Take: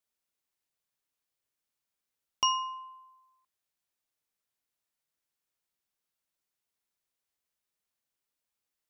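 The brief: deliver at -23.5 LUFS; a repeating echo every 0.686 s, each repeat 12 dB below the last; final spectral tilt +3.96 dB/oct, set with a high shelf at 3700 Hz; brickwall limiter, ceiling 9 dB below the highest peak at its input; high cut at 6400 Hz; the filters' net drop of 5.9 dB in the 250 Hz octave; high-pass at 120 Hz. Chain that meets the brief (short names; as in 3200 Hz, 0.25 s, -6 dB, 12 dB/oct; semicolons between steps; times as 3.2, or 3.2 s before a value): HPF 120 Hz; LPF 6400 Hz; bell 250 Hz -8 dB; high shelf 3700 Hz +5 dB; limiter -22 dBFS; feedback echo 0.686 s, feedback 25%, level -12 dB; gain +12.5 dB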